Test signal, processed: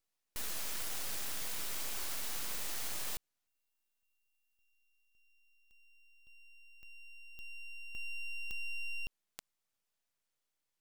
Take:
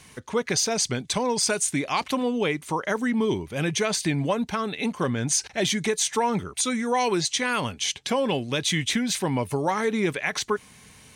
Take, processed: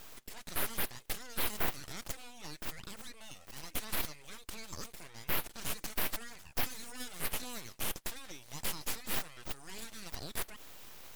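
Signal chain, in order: limiter -24 dBFS; differentiator; full-wave rectifier; gain +5 dB

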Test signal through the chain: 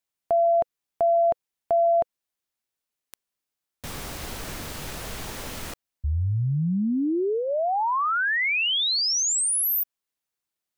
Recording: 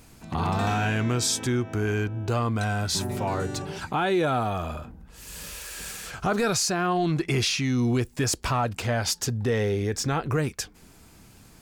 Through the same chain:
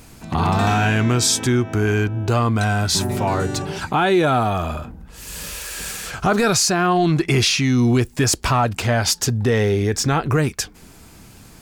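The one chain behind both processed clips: dynamic EQ 510 Hz, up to -4 dB, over -48 dBFS, Q 7.1; gain +7.5 dB

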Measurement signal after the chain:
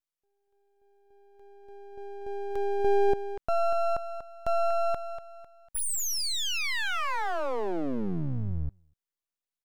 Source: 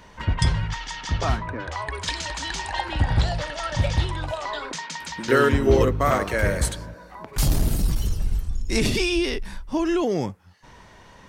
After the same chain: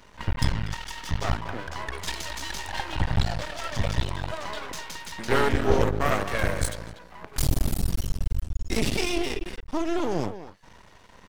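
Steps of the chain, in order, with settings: speakerphone echo 0.24 s, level -10 dB; half-wave rectifier

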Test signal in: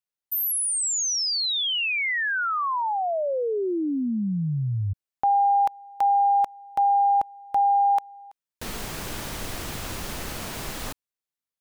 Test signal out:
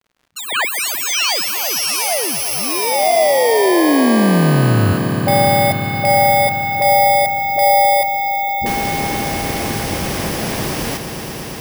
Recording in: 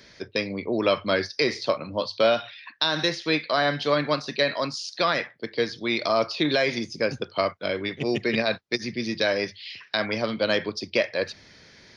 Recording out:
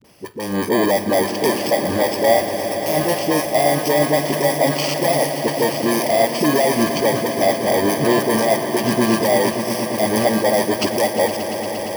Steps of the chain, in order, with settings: FFT order left unsorted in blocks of 32 samples; HPF 150 Hz 6 dB/oct; dynamic EQ 650 Hz, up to +7 dB, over -43 dBFS, Q 3.2; compressor 3:1, threshold -28 dBFS; limiter -21 dBFS; AGC gain up to 11 dB; dispersion highs, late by 47 ms, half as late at 390 Hz; crackle 140/s -46 dBFS; high shelf 4700 Hz -12 dB; swelling echo 0.116 s, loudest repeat 5, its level -13.5 dB; gain +6 dB

